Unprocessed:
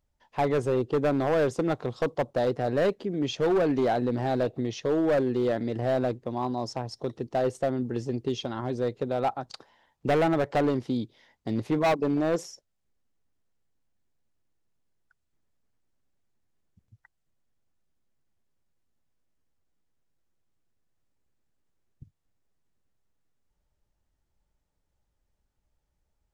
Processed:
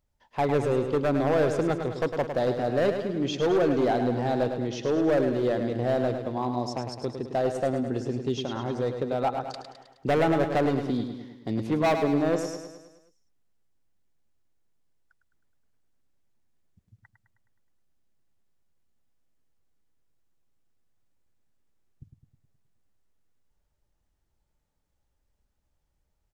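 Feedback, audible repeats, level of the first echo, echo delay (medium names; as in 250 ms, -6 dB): 55%, 6, -7.5 dB, 105 ms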